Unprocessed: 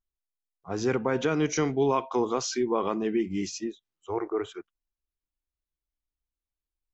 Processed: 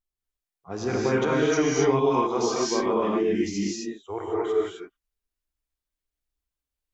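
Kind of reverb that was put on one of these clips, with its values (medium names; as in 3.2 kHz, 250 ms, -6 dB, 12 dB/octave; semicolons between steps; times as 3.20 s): gated-style reverb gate 290 ms rising, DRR -5 dB; trim -2.5 dB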